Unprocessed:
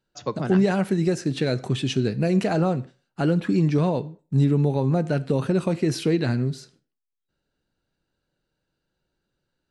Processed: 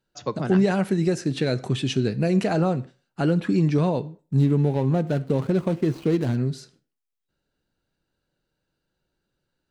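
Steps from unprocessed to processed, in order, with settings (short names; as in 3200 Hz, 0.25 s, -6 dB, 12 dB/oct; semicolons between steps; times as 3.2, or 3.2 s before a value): 4.38–6.38 median filter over 25 samples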